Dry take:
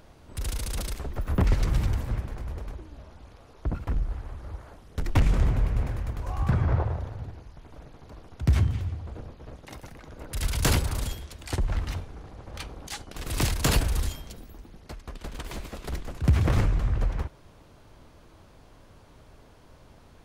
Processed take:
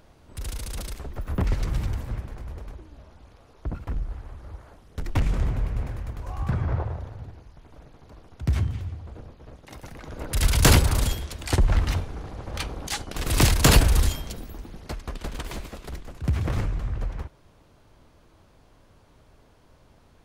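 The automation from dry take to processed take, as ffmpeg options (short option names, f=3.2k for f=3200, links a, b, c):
-af "volume=7dB,afade=t=in:st=9.68:d=0.49:silence=0.354813,afade=t=out:st=14.93:d=1:silence=0.298538"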